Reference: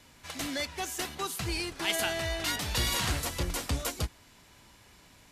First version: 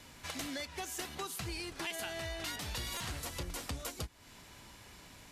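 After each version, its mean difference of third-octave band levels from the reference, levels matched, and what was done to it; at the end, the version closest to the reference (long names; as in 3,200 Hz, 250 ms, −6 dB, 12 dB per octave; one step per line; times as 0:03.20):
4.0 dB: downward compressor 5 to 1, threshold −41 dBFS, peak gain reduction 15 dB
buffer that repeats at 0:01.87/0:02.97, samples 128, times 10
level +2.5 dB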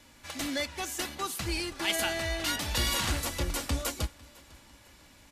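1.5 dB: comb filter 3.5 ms, depth 34%
on a send: repeating echo 501 ms, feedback 45%, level −24 dB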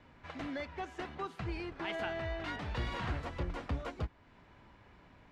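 8.5 dB: low-pass filter 1,800 Hz 12 dB per octave
in parallel at 0 dB: downward compressor, threshold −44 dBFS, peak gain reduction 16.5 dB
on the sum: level −6 dB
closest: second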